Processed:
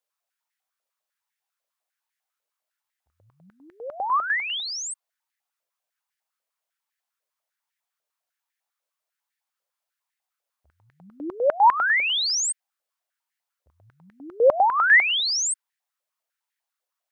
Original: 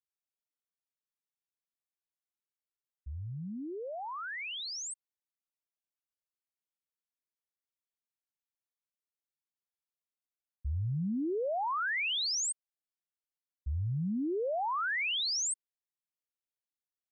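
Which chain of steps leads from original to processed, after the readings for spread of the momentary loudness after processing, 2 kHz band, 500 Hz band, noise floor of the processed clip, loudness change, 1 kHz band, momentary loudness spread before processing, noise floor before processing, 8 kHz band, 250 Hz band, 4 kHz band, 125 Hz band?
19 LU, +14.0 dB, +12.0 dB, below −85 dBFS, +12.5 dB, +14.5 dB, 12 LU, below −85 dBFS, +8.0 dB, −6.0 dB, +9.0 dB, below −20 dB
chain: high-pass on a step sequencer 10 Hz 550–1,800 Hz
level +8 dB

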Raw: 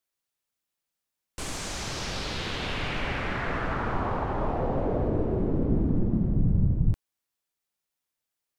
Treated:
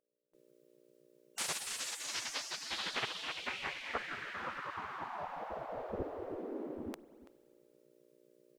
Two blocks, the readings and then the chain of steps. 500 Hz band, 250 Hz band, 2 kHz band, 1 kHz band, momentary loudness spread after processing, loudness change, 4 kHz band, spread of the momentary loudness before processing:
−12.0 dB, −19.0 dB, −6.0 dB, −9.0 dB, 6 LU, −11.0 dB, −3.0 dB, 8 LU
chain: hum with harmonics 60 Hz, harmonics 10, −54 dBFS −7 dB per octave
slap from a distant wall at 57 metres, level −16 dB
noise gate with hold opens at −49 dBFS
gate on every frequency bin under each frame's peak −20 dB weak
spring reverb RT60 2.6 s, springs 44 ms, chirp 35 ms, DRR 19.5 dB
level +3 dB

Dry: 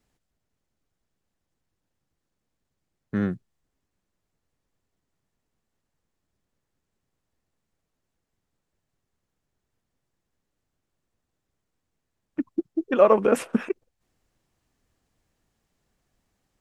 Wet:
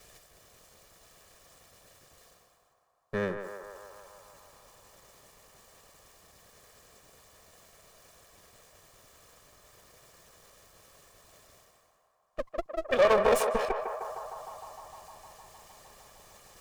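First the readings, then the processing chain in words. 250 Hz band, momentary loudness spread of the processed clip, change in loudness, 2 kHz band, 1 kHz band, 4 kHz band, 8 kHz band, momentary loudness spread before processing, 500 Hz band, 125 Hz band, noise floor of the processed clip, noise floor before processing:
−13.0 dB, 24 LU, −6.0 dB, +2.5 dB, −1.0 dB, can't be measured, +3.0 dB, 16 LU, −3.5 dB, −8.5 dB, −70 dBFS, −81 dBFS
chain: lower of the sound and its delayed copy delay 1.7 ms
reversed playback
upward compression, threshold −36 dBFS
reversed playback
soft clipping −16.5 dBFS, distortion −9 dB
bass and treble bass −8 dB, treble +4 dB
feedback echo with a band-pass in the loop 153 ms, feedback 84%, band-pass 900 Hz, level −5.5 dB

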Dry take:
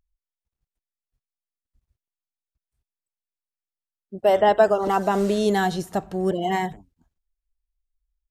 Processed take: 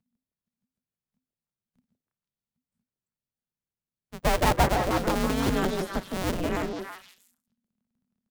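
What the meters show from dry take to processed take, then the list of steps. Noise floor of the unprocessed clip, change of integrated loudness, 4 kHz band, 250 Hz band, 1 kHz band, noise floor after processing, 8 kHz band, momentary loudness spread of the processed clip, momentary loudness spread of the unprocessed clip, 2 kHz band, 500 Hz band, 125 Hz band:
below −85 dBFS, −5.0 dB, +0.5 dB, −2.5 dB, −5.0 dB, below −85 dBFS, +4.0 dB, 11 LU, 10 LU, −1.5 dB, −8.5 dB, +1.5 dB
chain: sub-harmonics by changed cycles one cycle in 2, inverted
echo through a band-pass that steps 163 ms, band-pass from 640 Hz, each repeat 1.4 octaves, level −1.5 dB
frequency shifter −260 Hz
level −5.5 dB

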